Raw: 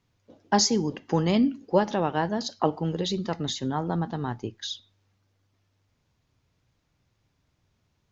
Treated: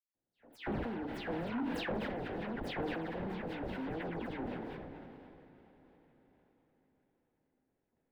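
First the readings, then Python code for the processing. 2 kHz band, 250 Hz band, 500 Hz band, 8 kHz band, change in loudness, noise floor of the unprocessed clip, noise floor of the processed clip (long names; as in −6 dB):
−5.5 dB, −12.0 dB, −12.0 dB, can't be measured, −13.0 dB, −73 dBFS, −85 dBFS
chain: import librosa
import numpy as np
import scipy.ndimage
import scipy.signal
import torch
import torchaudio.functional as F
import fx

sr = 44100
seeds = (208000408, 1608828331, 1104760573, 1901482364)

p1 = scipy.signal.sosfilt(scipy.signal.butter(2, 260.0, 'highpass', fs=sr, output='sos'), x)
p2 = fx.high_shelf(p1, sr, hz=6600.0, db=-6.5)
p3 = fx.hum_notches(p2, sr, base_hz=50, count=9)
p4 = p3 + 0.41 * np.pad(p3, (int(3.9 * sr / 1000.0), 0))[:len(p3)]
p5 = fx.level_steps(p4, sr, step_db=11)
p6 = fx.sample_hold(p5, sr, seeds[0], rate_hz=1200.0, jitter_pct=20)
p7 = fx.dispersion(p6, sr, late='lows', ms=150.0, hz=2800.0)
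p8 = 10.0 ** (-29.0 / 20.0) * np.tanh(p7 / 10.0 ** (-29.0 / 20.0))
p9 = fx.air_absorb(p8, sr, metres=480.0)
p10 = p9 + fx.echo_diffused(p9, sr, ms=543, feedback_pct=46, wet_db=-12.5, dry=0)
p11 = fx.sustainer(p10, sr, db_per_s=20.0)
y = F.gain(torch.from_numpy(p11), -3.0).numpy()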